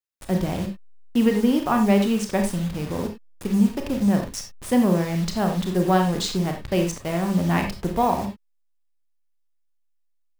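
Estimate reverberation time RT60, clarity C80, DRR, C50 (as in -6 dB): no single decay rate, 11.5 dB, 3.5 dB, 7.5 dB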